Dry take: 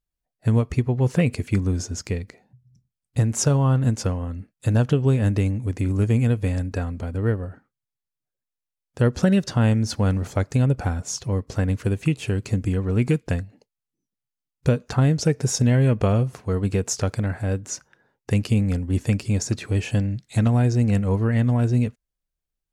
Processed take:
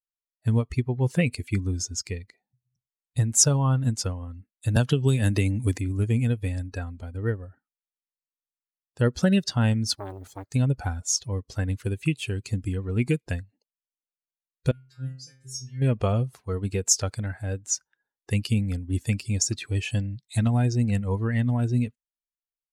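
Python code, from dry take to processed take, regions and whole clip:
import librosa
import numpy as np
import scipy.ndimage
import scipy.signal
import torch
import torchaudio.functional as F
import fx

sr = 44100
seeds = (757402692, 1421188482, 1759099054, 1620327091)

y = fx.chain(x, sr, fx.high_shelf(hz=2800.0, db=6.5),
    fx.band_squash(depth_pct=100), at=(4.76, 5.78))
y = fx.chain(y, sr, fx.law_mismatch(coded='A'),
    fx.transformer_sat(knee_hz=770.0), at=(9.93, 10.53))
y = fx.chain(y, sr, fx.peak_eq(hz=760.0, db=-12.0, octaves=0.71),
    fx.stiff_resonator(f0_hz=130.0, decay_s=0.82, stiffness=0.002), at=(14.71, 15.82))
y = fx.bin_expand(y, sr, power=1.5)
y = fx.peak_eq(y, sr, hz=8200.0, db=10.0, octaves=2.9)
y = y * 10.0 ** (-1.5 / 20.0)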